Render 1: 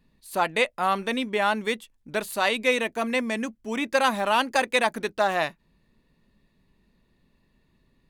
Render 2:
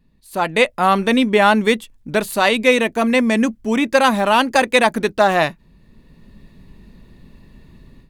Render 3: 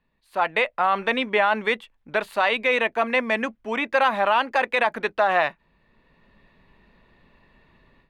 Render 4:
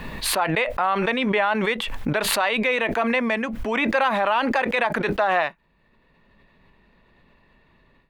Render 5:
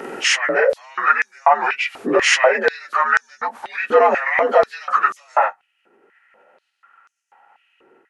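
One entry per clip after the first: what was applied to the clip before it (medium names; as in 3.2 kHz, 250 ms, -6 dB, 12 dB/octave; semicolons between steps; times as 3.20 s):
bass shelf 310 Hz +8 dB; level rider gain up to 16 dB; trim -1 dB
three-band isolator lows -16 dB, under 530 Hz, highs -21 dB, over 3.3 kHz; peak limiter -10 dBFS, peak gain reduction 7 dB
swell ahead of each attack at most 22 dB/s; trim -1.5 dB
frequency axis rescaled in octaves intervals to 86%; step-sequenced high-pass 4.1 Hz 380–6200 Hz; trim +5.5 dB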